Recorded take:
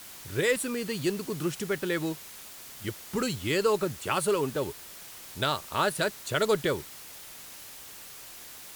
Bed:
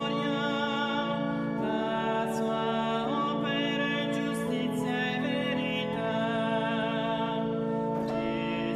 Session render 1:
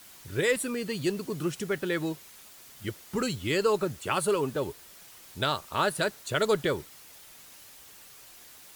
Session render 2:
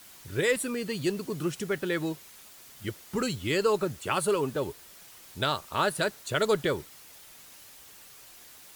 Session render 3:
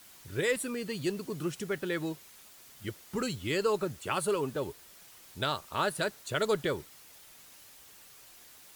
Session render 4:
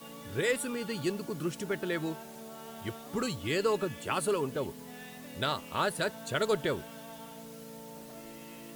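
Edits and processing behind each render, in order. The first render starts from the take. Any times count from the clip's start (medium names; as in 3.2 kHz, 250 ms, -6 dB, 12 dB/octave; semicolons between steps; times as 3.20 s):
noise reduction 6 dB, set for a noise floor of -46 dBFS
no audible change
trim -3.5 dB
add bed -17.5 dB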